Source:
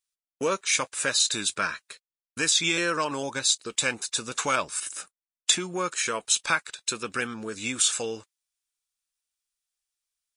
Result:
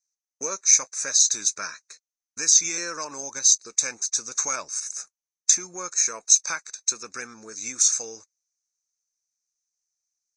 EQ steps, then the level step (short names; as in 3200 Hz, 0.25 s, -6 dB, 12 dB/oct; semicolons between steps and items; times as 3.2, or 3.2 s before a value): Butterworth band-stop 3100 Hz, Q 2.1; synth low-pass 6200 Hz, resonance Q 14; bell 99 Hz -7 dB 3 oct; -6.5 dB